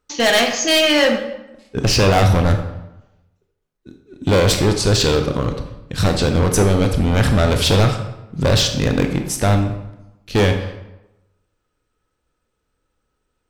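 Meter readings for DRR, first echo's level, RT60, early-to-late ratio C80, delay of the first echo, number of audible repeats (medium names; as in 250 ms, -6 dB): 5.0 dB, no echo, 0.95 s, 10.0 dB, no echo, no echo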